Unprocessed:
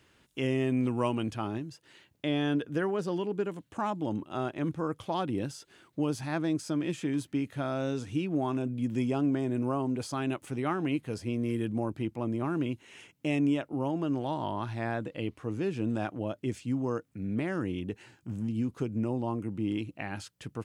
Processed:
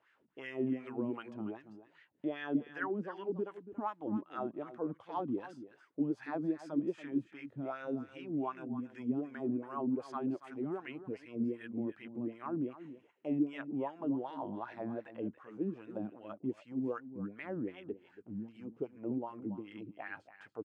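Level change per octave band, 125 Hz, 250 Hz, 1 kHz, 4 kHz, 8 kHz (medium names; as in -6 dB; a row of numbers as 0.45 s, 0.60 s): -14.0 dB, -6.0 dB, -7.0 dB, under -15 dB, under -20 dB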